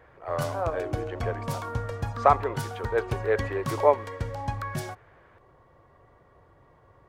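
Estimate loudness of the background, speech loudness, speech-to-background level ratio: -33.5 LUFS, -28.0 LUFS, 5.5 dB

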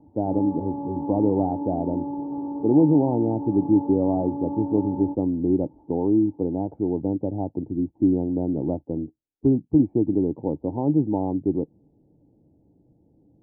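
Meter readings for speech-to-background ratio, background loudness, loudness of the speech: 7.0 dB, -31.0 LUFS, -24.0 LUFS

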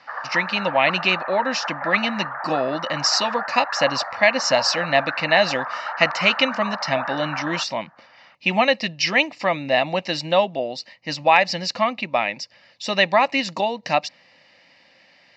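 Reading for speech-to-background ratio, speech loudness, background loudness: 8.0 dB, -21.0 LUFS, -29.0 LUFS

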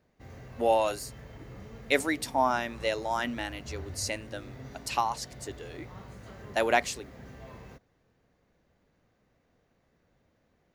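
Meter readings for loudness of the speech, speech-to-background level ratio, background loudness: -30.0 LUFS, 16.5 dB, -46.5 LUFS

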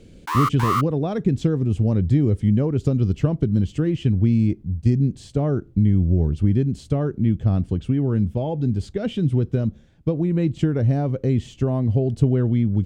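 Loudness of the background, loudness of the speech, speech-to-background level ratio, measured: -24.5 LUFS, -21.5 LUFS, 3.0 dB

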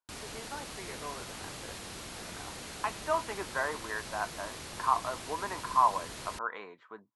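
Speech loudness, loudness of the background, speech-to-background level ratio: -34.0 LUFS, -42.0 LUFS, 8.0 dB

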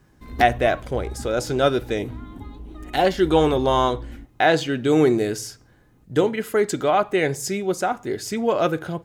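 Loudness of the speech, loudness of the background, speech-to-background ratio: -21.5 LUFS, -37.5 LUFS, 16.0 dB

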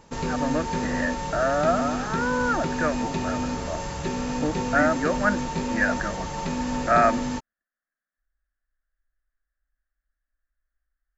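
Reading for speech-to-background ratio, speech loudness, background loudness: 2.5 dB, -26.5 LUFS, -29.0 LUFS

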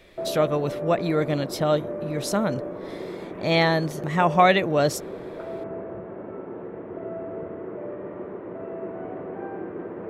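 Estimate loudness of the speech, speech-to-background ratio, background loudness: -23.5 LUFS, 11.0 dB, -34.5 LUFS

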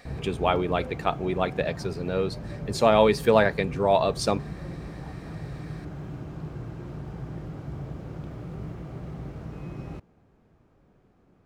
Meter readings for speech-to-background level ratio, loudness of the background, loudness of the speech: 12.5 dB, -37.5 LUFS, -25.0 LUFS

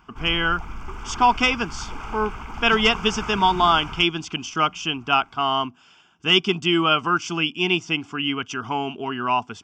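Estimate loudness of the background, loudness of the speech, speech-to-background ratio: -35.0 LUFS, -21.5 LUFS, 13.5 dB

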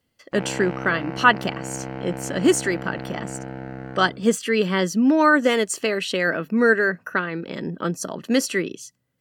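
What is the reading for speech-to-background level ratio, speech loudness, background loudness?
11.5 dB, -22.0 LUFS, -33.5 LUFS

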